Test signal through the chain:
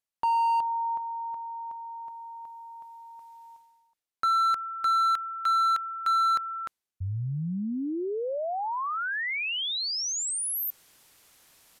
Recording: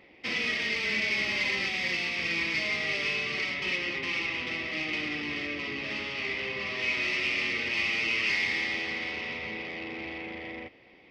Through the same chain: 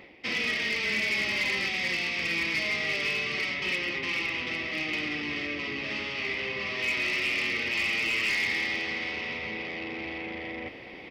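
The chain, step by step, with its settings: downsampling 32000 Hz; overloaded stage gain 22.5 dB; reverse; upward compressor, threshold -33 dBFS; reverse; gain +1 dB

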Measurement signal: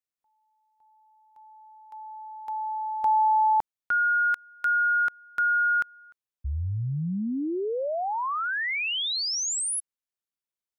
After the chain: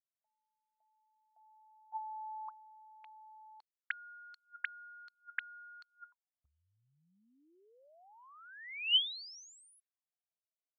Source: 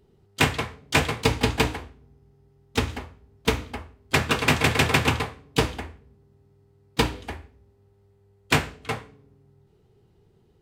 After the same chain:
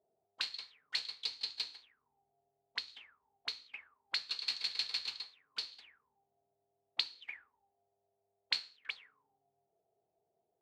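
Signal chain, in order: auto-wah 640–4300 Hz, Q 20, up, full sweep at -24.5 dBFS; mismatched tape noise reduction decoder only; gain +5.5 dB

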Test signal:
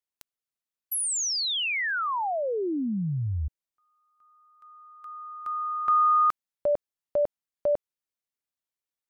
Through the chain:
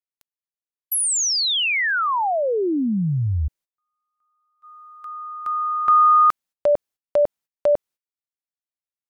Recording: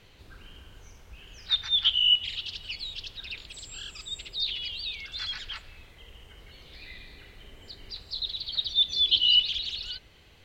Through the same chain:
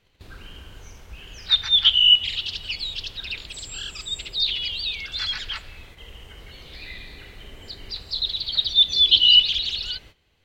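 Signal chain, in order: gate -52 dBFS, range -17 dB; gain +7 dB

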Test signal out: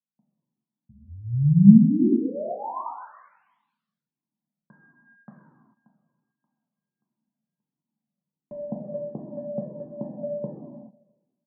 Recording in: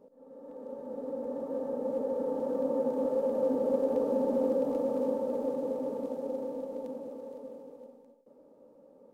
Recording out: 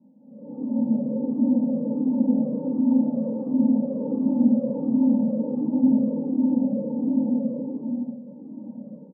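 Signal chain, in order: Wiener smoothing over 25 samples; reverse; compressor 8:1, threshold -41 dBFS; reverse; Chebyshev band-pass 140–1000 Hz, order 4; dynamic EQ 440 Hz, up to +4 dB, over -59 dBFS, Q 2.1; AGC gain up to 16 dB; resonant low shelf 320 Hz +11.5 dB, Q 3; on a send: feedback echo 0.163 s, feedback 54%, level -23 dB; on the sum: non-linear reverb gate 0.47 s falling, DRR -3 dB; cascading flanger falling 1.4 Hz; gain -2.5 dB

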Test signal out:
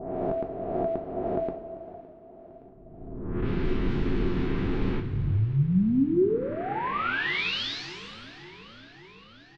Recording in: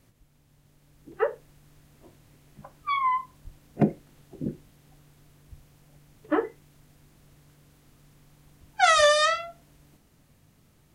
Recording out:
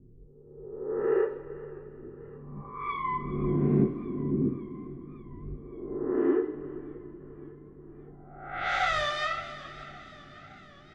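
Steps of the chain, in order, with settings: spectral swells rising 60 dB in 1.33 s; low-pass opened by the level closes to 600 Hz, open at -17 dBFS; LPF 3000 Hz 12 dB/oct; low-pass opened by the level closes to 800 Hz, open at -15 dBFS; resonant low shelf 470 Hz +8.5 dB, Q 3; compressor 2.5:1, threshold -18 dBFS; on a send: echo 0.394 s -18 dB; on the sum: two-slope reverb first 0.45 s, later 4.3 s, from -18 dB, DRR 2.5 dB; warbling echo 0.566 s, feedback 71%, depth 95 cents, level -20.5 dB; gain -8 dB

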